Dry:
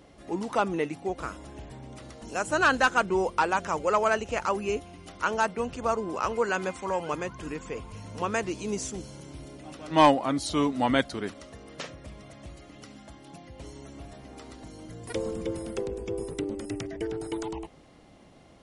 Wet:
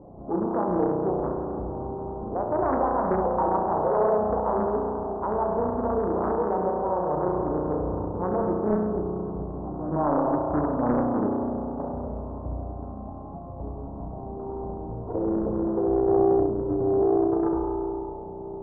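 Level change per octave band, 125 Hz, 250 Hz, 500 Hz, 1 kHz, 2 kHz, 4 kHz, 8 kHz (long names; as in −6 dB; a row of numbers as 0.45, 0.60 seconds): +6.5 dB, +5.5 dB, +6.0 dB, +1.5 dB, −15.0 dB, below −40 dB, below −40 dB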